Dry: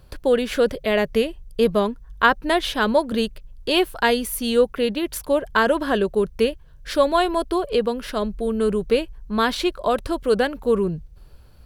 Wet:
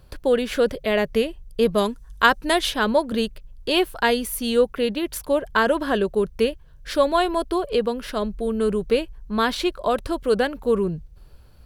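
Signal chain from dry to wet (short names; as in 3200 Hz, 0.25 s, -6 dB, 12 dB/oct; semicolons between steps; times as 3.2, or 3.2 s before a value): 1.77–2.69 bell 8700 Hz +14.5 dB -> +7.5 dB 2 oct; gain -1 dB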